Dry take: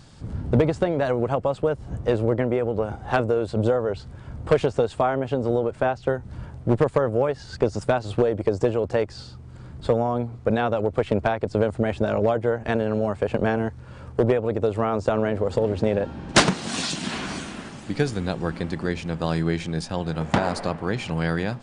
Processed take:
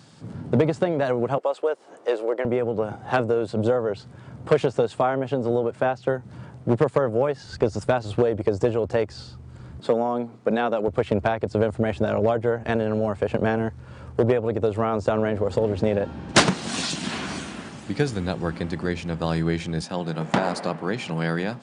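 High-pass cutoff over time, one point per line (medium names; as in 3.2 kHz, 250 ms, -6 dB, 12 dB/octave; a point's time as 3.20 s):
high-pass 24 dB/octave
120 Hz
from 1.38 s 380 Hz
from 2.45 s 110 Hz
from 7.46 s 48 Hz
from 9.80 s 170 Hz
from 10.88 s 54 Hz
from 19.83 s 140 Hz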